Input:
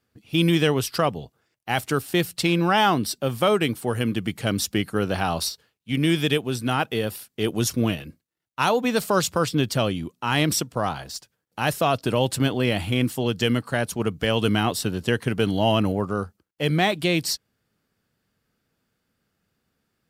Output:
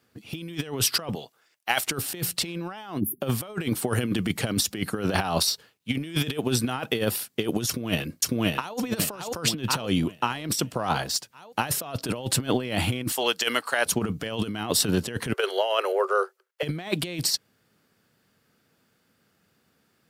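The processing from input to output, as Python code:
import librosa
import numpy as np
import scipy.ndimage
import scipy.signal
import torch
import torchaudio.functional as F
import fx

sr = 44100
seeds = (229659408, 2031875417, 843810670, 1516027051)

y = fx.highpass(x, sr, hz=1100.0, slope=6, at=(1.15, 1.87))
y = fx.spec_erase(y, sr, start_s=3.0, length_s=0.21, low_hz=390.0, high_hz=10000.0)
y = fx.echo_throw(y, sr, start_s=7.67, length_s=1.1, ms=550, feedback_pct=40, wet_db=-3.0)
y = fx.highpass(y, sr, hz=710.0, slope=12, at=(13.12, 13.86))
y = fx.cheby_ripple_highpass(y, sr, hz=370.0, ripple_db=6, at=(15.33, 16.63))
y = scipy.signal.sosfilt(scipy.signal.butter(2, 77.0, 'highpass', fs=sr, output='sos'), y)
y = fx.low_shelf(y, sr, hz=110.0, db=-6.0)
y = fx.over_compress(y, sr, threshold_db=-28.0, ratio=-0.5)
y = y * librosa.db_to_amplitude(2.5)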